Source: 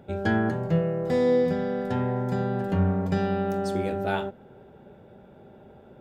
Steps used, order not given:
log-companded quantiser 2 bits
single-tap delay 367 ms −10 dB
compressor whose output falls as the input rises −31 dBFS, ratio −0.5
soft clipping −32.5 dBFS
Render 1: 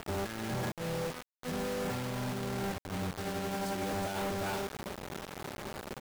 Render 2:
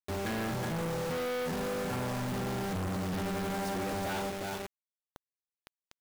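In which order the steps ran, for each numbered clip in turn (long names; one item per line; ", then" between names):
single-tap delay, then compressor whose output falls as the input rises, then log-companded quantiser, then soft clipping
single-tap delay, then log-companded quantiser, then soft clipping, then compressor whose output falls as the input rises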